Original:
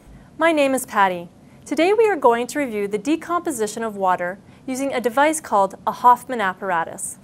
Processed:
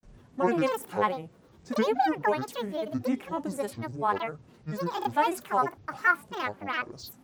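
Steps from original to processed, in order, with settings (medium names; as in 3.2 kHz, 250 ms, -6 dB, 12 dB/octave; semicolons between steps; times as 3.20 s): granulator, spray 15 ms, pitch spread up and down by 12 st; harmonic-percussive split percussive -8 dB; gate with hold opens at -53 dBFS; trim -5.5 dB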